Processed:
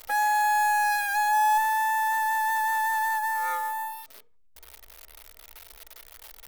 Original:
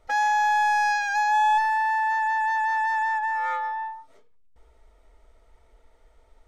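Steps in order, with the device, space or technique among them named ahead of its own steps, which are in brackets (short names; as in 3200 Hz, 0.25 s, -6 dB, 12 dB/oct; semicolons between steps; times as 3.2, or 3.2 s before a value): budget class-D amplifier (switching dead time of 0.071 ms; switching spikes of -26 dBFS); gain -1.5 dB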